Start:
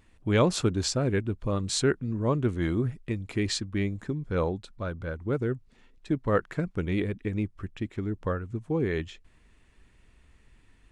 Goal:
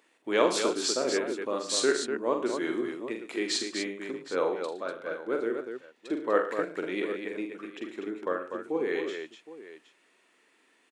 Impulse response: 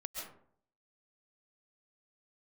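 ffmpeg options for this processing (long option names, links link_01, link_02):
-filter_complex "[0:a]highpass=frequency=320:width=0.5412,highpass=frequency=320:width=1.3066,asplit=2[link_01][link_02];[link_02]aecho=0:1:44|79|114|146|246|766:0.501|0.211|0.211|0.106|0.473|0.158[link_03];[link_01][link_03]amix=inputs=2:normalize=0"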